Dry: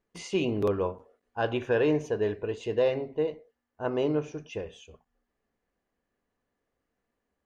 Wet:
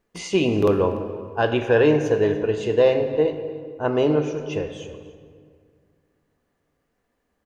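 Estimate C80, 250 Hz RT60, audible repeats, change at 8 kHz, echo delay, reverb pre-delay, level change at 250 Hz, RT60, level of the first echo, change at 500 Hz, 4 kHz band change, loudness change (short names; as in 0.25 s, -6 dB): 10.0 dB, 2.3 s, 1, n/a, 0.291 s, 14 ms, +8.0 dB, 2.0 s, -19.5 dB, +8.5 dB, +8.0 dB, +8.0 dB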